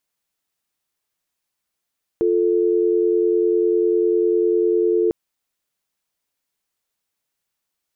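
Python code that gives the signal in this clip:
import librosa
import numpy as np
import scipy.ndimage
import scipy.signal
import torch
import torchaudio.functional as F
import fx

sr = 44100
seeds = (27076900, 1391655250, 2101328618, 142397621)

y = fx.call_progress(sr, length_s=2.9, kind='dial tone', level_db=-17.5)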